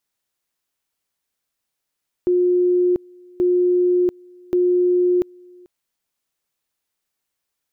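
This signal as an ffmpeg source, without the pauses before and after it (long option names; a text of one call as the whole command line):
ffmpeg -f lavfi -i "aevalsrc='pow(10,(-13.5-28.5*gte(mod(t,1.13),0.69))/20)*sin(2*PI*358*t)':duration=3.39:sample_rate=44100" out.wav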